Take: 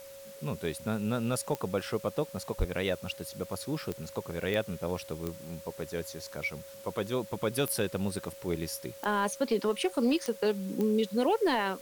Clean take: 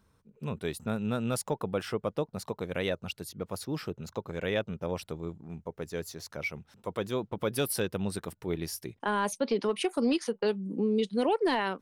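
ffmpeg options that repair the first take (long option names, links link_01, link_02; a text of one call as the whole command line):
ffmpeg -i in.wav -filter_complex "[0:a]adeclick=threshold=4,bandreject=frequency=550:width=30,asplit=3[link_01][link_02][link_03];[link_01]afade=type=out:start_time=2.58:duration=0.02[link_04];[link_02]highpass=frequency=140:width=0.5412,highpass=frequency=140:width=1.3066,afade=type=in:start_time=2.58:duration=0.02,afade=type=out:start_time=2.7:duration=0.02[link_05];[link_03]afade=type=in:start_time=2.7:duration=0.02[link_06];[link_04][link_05][link_06]amix=inputs=3:normalize=0,afftdn=noise_reduction=15:noise_floor=-48" out.wav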